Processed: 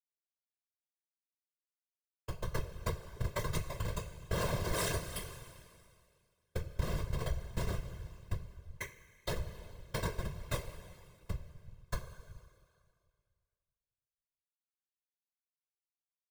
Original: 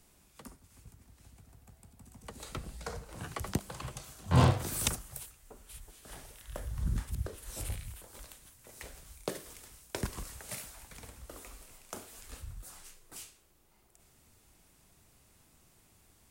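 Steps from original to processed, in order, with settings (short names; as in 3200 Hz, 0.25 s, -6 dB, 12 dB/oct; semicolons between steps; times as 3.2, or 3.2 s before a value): low shelf 81 Hz -8.5 dB; Schmitt trigger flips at -33 dBFS; two-slope reverb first 0.22 s, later 2.1 s, from -20 dB, DRR -5.5 dB; compressor 3:1, threshold -40 dBFS, peak gain reduction 7 dB; whisperiser; comb 1.9 ms, depth 81%; gain +6 dB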